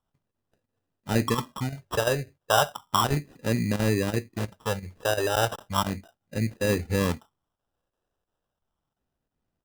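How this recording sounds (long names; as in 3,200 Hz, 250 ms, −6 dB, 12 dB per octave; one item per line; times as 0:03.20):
phaser sweep stages 4, 0.34 Hz, lowest notch 210–1,200 Hz
chopped level 2.9 Hz, depth 60%, duty 90%
aliases and images of a low sample rate 2,200 Hz, jitter 0%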